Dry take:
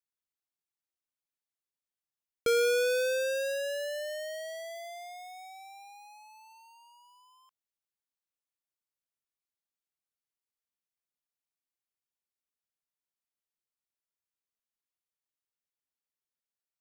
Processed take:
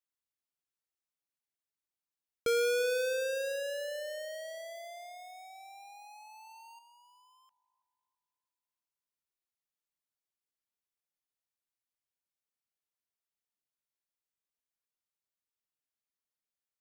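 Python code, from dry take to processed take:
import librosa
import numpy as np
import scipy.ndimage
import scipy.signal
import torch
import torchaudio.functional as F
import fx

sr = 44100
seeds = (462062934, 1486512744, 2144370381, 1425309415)

p1 = x + fx.echo_wet_bandpass(x, sr, ms=330, feedback_pct=43, hz=570.0, wet_db=-16.5, dry=0)
p2 = fx.env_flatten(p1, sr, amount_pct=70, at=(5.5, 6.79))
y = p2 * librosa.db_to_amplitude(-3.0)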